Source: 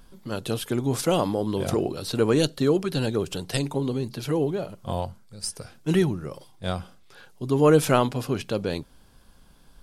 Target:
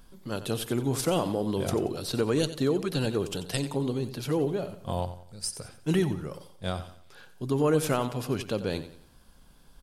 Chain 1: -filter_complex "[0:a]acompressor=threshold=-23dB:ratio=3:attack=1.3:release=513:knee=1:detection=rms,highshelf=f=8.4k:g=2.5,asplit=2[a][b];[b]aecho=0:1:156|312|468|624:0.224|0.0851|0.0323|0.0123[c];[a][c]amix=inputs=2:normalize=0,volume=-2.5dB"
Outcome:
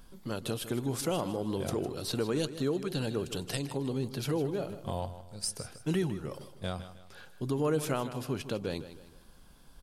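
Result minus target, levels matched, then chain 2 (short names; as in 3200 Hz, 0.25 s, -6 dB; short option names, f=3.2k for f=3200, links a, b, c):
echo 66 ms late; compressor: peak gain reduction +5 dB
-filter_complex "[0:a]acompressor=threshold=-15.5dB:ratio=3:attack=1.3:release=513:knee=1:detection=rms,highshelf=f=8.4k:g=2.5,asplit=2[a][b];[b]aecho=0:1:90|180|270|360:0.224|0.0851|0.0323|0.0123[c];[a][c]amix=inputs=2:normalize=0,volume=-2.5dB"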